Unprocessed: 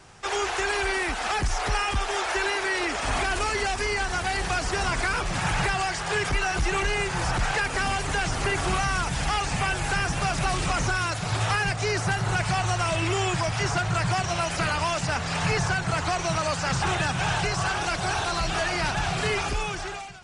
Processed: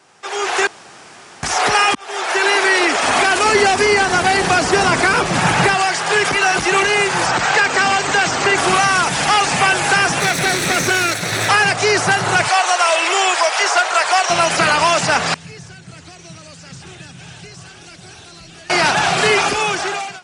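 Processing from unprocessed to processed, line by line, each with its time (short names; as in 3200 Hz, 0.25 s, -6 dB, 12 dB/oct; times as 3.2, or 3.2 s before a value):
0.67–1.43 room tone
1.95–2.56 fade in linear
3.45–5.74 low shelf 410 Hz +9.5 dB
7.26–8.58 Chebyshev low-pass 8600 Hz, order 10
10.2–11.49 minimum comb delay 0.49 ms
12.48–14.3 HPF 470 Hz 24 dB/oct
15.34–18.7 passive tone stack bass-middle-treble 10-0-1
whole clip: HPF 240 Hz 12 dB/oct; AGC gain up to 14 dB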